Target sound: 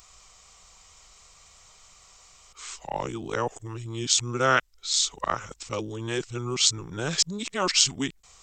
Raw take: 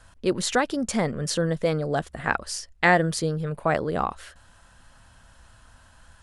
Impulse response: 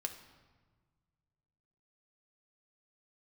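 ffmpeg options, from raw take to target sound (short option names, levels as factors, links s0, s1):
-af "areverse,asetrate=32590,aresample=44100,crystalizer=i=9:c=0,volume=0.398"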